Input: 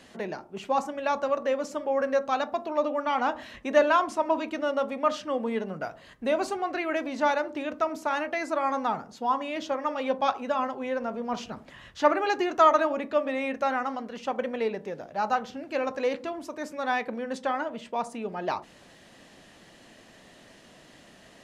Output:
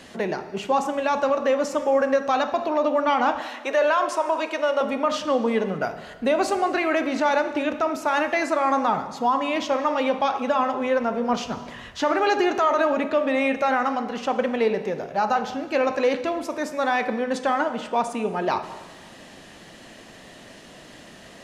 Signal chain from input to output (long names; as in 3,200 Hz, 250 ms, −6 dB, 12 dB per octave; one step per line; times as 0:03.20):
0:03.40–0:04.81: high-pass filter 380 Hz 24 dB per octave
brickwall limiter −20 dBFS, peak gain reduction 11.5 dB
convolution reverb RT60 1.5 s, pre-delay 31 ms, DRR 10 dB
level +7.5 dB